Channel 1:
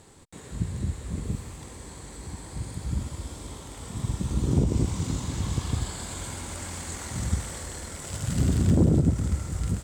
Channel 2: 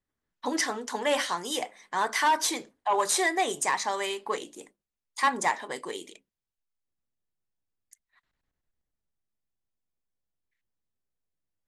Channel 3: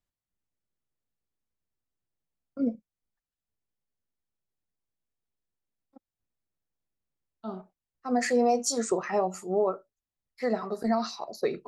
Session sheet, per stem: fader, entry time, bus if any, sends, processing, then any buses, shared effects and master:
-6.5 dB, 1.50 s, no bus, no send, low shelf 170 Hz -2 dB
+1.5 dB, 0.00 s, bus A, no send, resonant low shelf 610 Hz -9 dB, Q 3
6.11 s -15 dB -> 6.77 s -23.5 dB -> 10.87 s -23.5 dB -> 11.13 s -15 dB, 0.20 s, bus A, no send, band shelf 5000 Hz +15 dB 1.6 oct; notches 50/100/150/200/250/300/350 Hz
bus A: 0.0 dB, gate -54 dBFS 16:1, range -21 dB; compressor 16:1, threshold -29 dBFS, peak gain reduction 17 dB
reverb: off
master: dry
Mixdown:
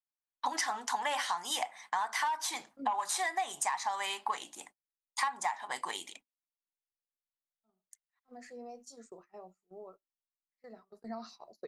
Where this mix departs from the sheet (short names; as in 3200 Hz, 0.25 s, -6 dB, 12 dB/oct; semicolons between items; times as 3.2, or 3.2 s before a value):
stem 1: muted; stem 3: missing band shelf 5000 Hz +15 dB 1.6 oct